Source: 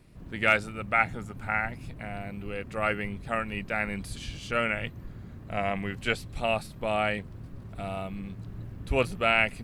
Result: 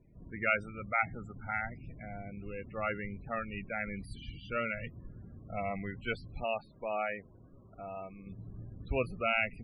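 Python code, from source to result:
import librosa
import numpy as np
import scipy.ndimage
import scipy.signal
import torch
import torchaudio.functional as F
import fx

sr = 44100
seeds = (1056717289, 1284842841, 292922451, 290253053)

y = fx.bass_treble(x, sr, bass_db=-10, treble_db=-10, at=(6.44, 8.27))
y = fx.spec_topn(y, sr, count=32)
y = y * librosa.db_to_amplitude(-6.0)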